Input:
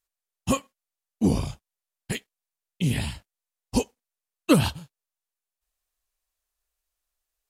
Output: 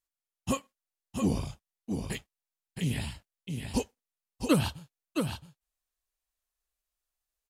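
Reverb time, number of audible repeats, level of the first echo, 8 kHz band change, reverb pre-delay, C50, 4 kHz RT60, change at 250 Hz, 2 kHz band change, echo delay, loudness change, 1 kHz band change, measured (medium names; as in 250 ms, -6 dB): no reverb, 1, -6.0 dB, -5.0 dB, no reverb, no reverb, no reverb, -5.0 dB, -5.0 dB, 669 ms, -6.5 dB, -5.0 dB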